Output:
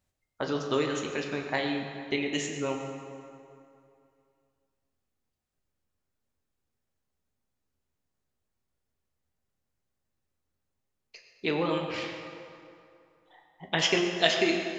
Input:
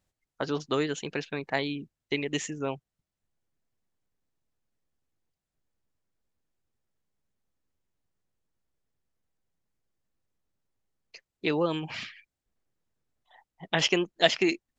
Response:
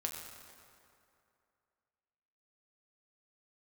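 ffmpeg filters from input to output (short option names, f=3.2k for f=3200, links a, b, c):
-filter_complex "[1:a]atrim=start_sample=2205[a];[0:a][a]afir=irnorm=-1:irlink=0"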